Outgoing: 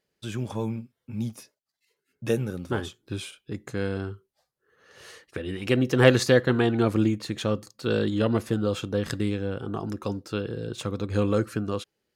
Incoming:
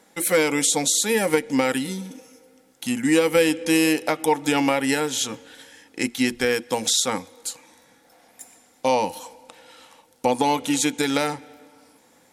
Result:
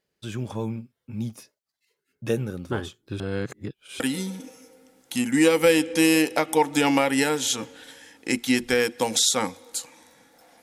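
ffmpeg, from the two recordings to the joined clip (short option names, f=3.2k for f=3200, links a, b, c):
-filter_complex "[0:a]apad=whole_dur=10.62,atrim=end=10.62,asplit=2[a][b];[a]atrim=end=3.202[c];[b]atrim=start=3.198:end=4.002,asetpts=PTS-STARTPTS,areverse[d];[1:a]atrim=start=1.708:end=8.33[e];[c][d]acrossfade=d=0.004:c1=hsin:c2=hsin[f];[f][e]acrossfade=d=0.004:c1=hsin:c2=hsin"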